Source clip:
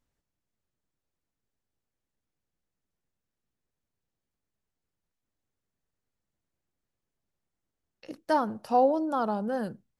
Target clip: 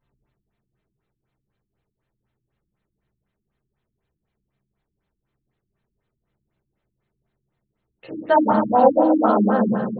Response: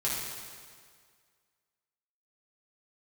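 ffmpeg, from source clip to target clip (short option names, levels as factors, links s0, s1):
-filter_complex "[1:a]atrim=start_sample=2205[s0];[0:a][s0]afir=irnorm=-1:irlink=0,afftfilt=real='re*lt(b*sr/1024,340*pow(4400/340,0.5+0.5*sin(2*PI*4*pts/sr)))':imag='im*lt(b*sr/1024,340*pow(4400/340,0.5+0.5*sin(2*PI*4*pts/sr)))':win_size=1024:overlap=0.75,volume=1.88"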